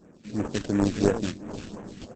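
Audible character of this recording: aliases and images of a low sample rate 2.1 kHz, jitter 20%; phasing stages 2, 2.9 Hz, lowest notch 690–4200 Hz; Opus

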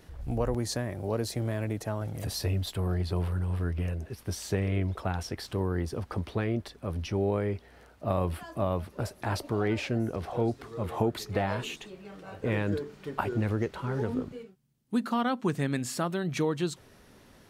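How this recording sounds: noise floor -56 dBFS; spectral tilt -6.0 dB/octave

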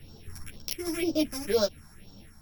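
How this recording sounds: a buzz of ramps at a fixed pitch in blocks of 8 samples; phasing stages 4, 2 Hz, lowest notch 470–2100 Hz; random-step tremolo; a shimmering, thickened sound

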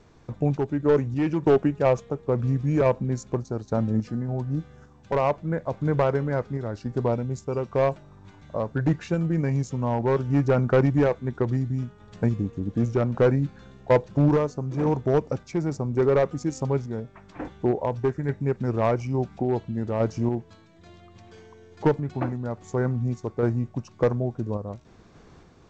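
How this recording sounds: random-step tremolo; G.722

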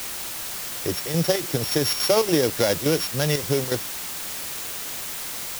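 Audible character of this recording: a buzz of ramps at a fixed pitch in blocks of 8 samples; chopped level 3.5 Hz, depth 65%, duty 75%; a quantiser's noise floor 6-bit, dither triangular

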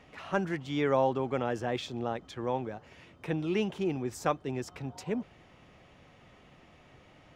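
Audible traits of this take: noise floor -59 dBFS; spectral tilt -5.5 dB/octave

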